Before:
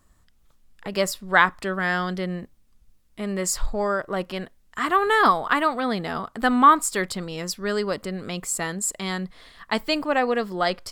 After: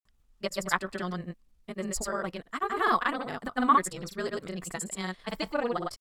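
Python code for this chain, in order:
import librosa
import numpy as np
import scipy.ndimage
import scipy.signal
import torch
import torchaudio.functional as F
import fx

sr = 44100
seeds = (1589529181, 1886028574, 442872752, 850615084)

y = fx.stretch_grains(x, sr, factor=0.55, grain_ms=40.0)
y = fx.granulator(y, sr, seeds[0], grain_ms=100.0, per_s=20.0, spray_ms=100.0, spread_st=0)
y = y * 10.0 ** (-4.5 / 20.0)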